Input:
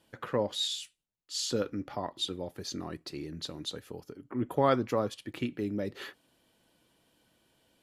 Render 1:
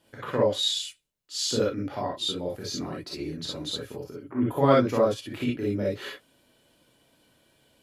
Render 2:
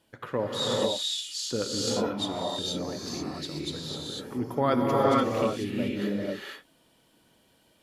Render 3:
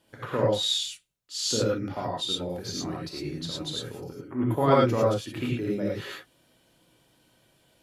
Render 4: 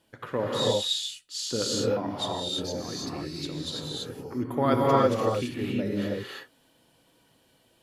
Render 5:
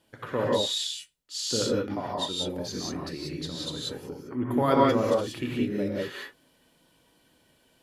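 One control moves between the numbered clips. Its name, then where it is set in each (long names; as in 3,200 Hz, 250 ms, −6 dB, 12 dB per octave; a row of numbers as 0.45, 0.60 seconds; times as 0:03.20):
reverb whose tail is shaped and stops, gate: 80, 520, 130, 360, 210 milliseconds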